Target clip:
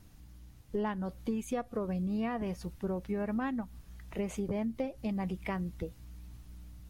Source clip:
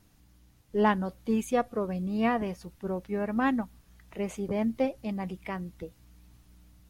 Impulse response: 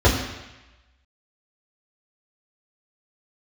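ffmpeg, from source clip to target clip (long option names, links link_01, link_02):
-af "lowshelf=frequency=130:gain=8,acompressor=threshold=-32dB:ratio=10,volume=1.5dB"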